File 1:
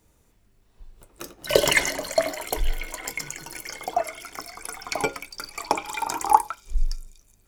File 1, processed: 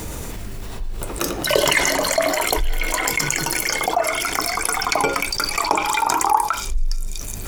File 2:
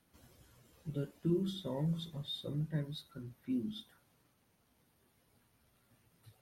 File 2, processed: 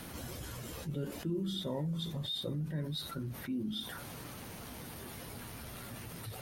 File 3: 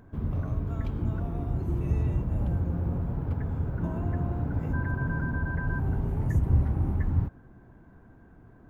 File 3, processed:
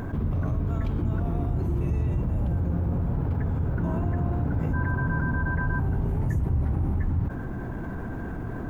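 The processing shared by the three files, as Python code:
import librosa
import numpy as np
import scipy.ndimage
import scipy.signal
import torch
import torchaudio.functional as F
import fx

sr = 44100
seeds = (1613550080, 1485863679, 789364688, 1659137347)

y = fx.dynamic_eq(x, sr, hz=1100.0, q=2.0, threshold_db=-43.0, ratio=4.0, max_db=4)
y = fx.env_flatten(y, sr, amount_pct=70)
y = F.gain(torch.from_numpy(y), -4.5).numpy()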